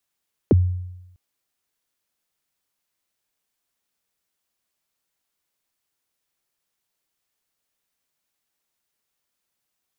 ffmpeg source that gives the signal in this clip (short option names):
-f lavfi -i "aevalsrc='0.355*pow(10,-3*t/0.94)*sin(2*PI*(510*0.026/log(90/510)*(exp(log(90/510)*min(t,0.026)/0.026)-1)+90*max(t-0.026,0)))':d=0.65:s=44100"